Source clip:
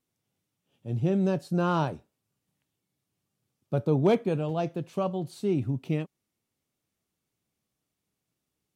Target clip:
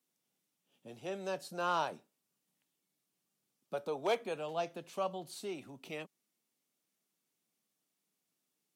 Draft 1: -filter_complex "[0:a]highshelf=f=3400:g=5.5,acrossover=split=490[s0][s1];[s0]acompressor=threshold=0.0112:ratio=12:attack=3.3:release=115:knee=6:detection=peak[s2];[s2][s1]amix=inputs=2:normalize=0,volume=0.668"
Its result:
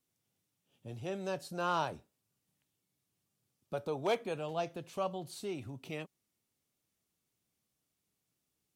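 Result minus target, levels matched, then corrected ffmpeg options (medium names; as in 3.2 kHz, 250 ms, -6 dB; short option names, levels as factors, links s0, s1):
250 Hz band +3.0 dB
-filter_complex "[0:a]highshelf=f=3400:g=5.5,acrossover=split=490[s0][s1];[s0]acompressor=threshold=0.0112:ratio=12:attack=3.3:release=115:knee=6:detection=peak,highpass=f=180:w=0.5412,highpass=f=180:w=1.3066[s2];[s2][s1]amix=inputs=2:normalize=0,volume=0.668"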